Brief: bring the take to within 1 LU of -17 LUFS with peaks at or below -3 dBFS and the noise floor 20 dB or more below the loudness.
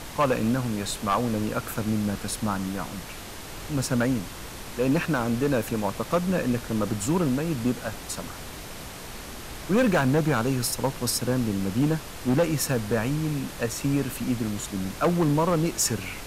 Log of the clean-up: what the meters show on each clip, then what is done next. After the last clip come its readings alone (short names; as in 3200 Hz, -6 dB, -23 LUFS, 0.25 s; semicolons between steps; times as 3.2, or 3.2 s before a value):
clipped 1.1%; flat tops at -16.5 dBFS; noise floor -39 dBFS; noise floor target -46 dBFS; loudness -26.0 LUFS; peak -16.5 dBFS; loudness target -17.0 LUFS
-> clip repair -16.5 dBFS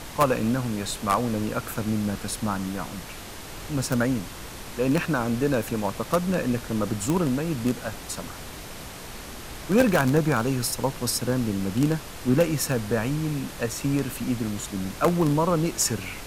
clipped 0.0%; noise floor -39 dBFS; noise floor target -46 dBFS
-> noise print and reduce 7 dB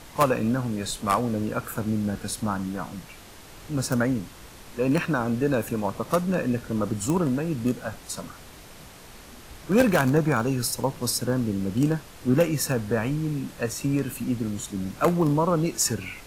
noise floor -46 dBFS; loudness -25.5 LUFS; peak -7.5 dBFS; loudness target -17.0 LUFS
-> gain +8.5 dB; limiter -3 dBFS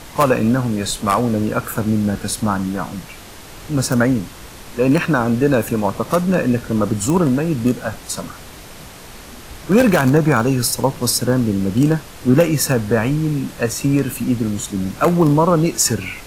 loudness -17.5 LUFS; peak -3.0 dBFS; noise floor -38 dBFS